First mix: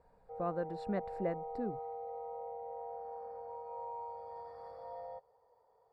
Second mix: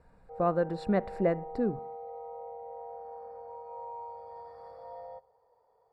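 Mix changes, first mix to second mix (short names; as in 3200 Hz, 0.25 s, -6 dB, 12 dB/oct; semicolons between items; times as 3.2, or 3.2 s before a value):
speech +8.0 dB; reverb: on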